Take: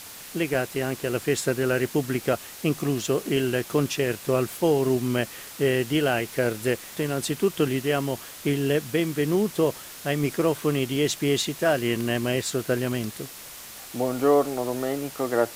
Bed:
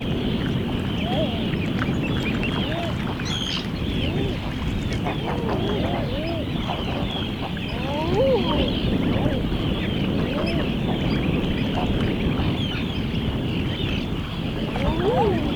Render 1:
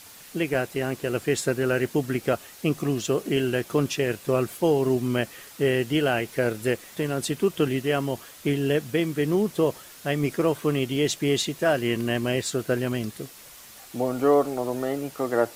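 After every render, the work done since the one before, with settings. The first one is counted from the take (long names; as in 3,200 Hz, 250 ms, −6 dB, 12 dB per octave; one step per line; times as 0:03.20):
broadband denoise 6 dB, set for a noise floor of −42 dBFS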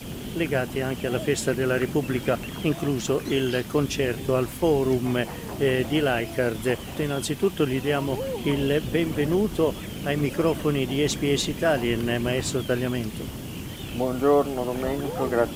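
mix in bed −11 dB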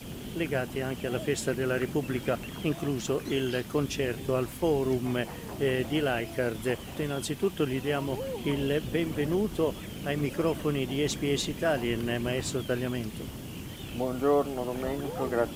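level −5 dB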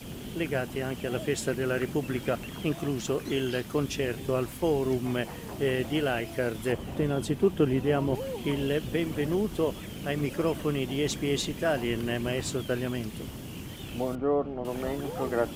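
0:06.72–0:08.15: tilt shelving filter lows +5 dB, about 1,300 Hz
0:14.15–0:14.65: head-to-tape spacing loss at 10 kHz 43 dB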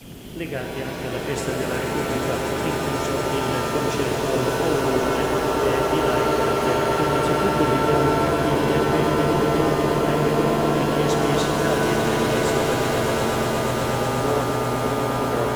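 on a send: echo that builds up and dies away 121 ms, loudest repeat 8, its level −10 dB
on the sum: reverb with rising layers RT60 3.4 s, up +7 semitones, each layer −2 dB, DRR 2 dB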